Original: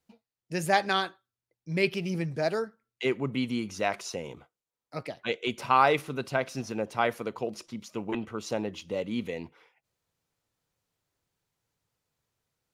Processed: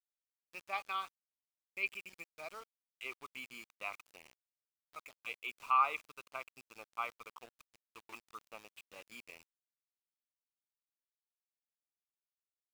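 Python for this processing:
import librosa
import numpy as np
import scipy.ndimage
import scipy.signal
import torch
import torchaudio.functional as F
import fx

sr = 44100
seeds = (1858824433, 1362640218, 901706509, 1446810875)

y = fx.double_bandpass(x, sr, hz=1700.0, octaves=1.0)
y = np.where(np.abs(y) >= 10.0 ** (-48.0 / 20.0), y, 0.0)
y = y * librosa.db_to_amplitude(-3.0)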